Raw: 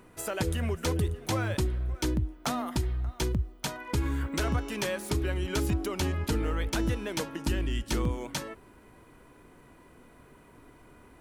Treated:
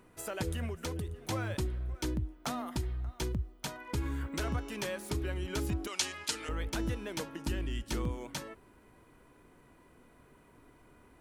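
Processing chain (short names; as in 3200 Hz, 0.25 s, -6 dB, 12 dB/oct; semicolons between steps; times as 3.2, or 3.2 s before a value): 0.65–1.19 compressor, threshold -28 dBFS, peak gain reduction 5.5 dB; 5.87–6.49 weighting filter ITU-R 468; gain -5.5 dB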